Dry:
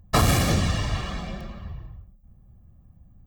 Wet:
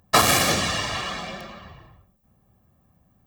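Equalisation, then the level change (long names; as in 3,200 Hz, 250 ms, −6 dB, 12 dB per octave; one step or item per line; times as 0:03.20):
high-pass filter 670 Hz 6 dB per octave
+7.0 dB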